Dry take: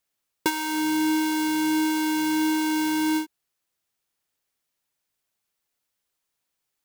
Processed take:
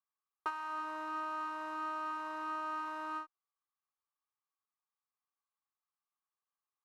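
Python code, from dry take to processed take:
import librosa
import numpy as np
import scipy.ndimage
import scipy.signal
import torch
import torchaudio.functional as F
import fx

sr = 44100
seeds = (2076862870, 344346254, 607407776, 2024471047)

y = fx.lower_of_two(x, sr, delay_ms=2.5)
y = fx.bandpass_q(y, sr, hz=1100.0, q=6.6)
y = F.gain(torch.from_numpy(y), 1.5).numpy()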